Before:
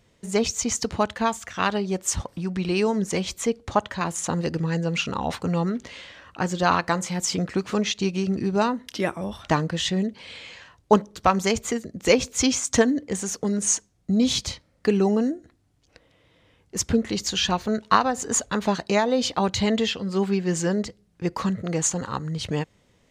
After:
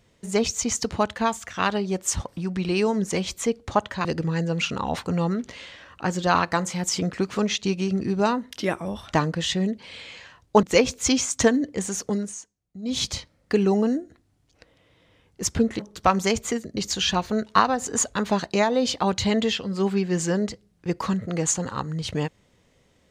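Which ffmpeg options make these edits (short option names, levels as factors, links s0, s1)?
-filter_complex "[0:a]asplit=7[s0][s1][s2][s3][s4][s5][s6];[s0]atrim=end=4.052[s7];[s1]atrim=start=4.408:end=10.992[s8];[s2]atrim=start=11.968:end=13.69,asetpts=PTS-STARTPTS,afade=t=out:st=1.502:d=0.22:silence=0.149624[s9];[s3]atrim=start=13.69:end=14.16,asetpts=PTS-STARTPTS,volume=0.15[s10];[s4]atrim=start=14.16:end=17.132,asetpts=PTS-STARTPTS,afade=t=in:d=0.22:silence=0.149624[s11];[s5]atrim=start=10.988:end=11.972[s12];[s6]atrim=start=17.128[s13];[s7][s8]acrossfade=d=0.004:c1=hsin:c2=hsin[s14];[s9][s10][s11]concat=n=3:v=0:a=1[s15];[s14][s15]acrossfade=d=0.004:c1=hsin:c2=hsin[s16];[s16][s12]acrossfade=d=0.004:c1=hsin:c2=hsin[s17];[s17][s13]acrossfade=d=0.004:c1=hsin:c2=hsin"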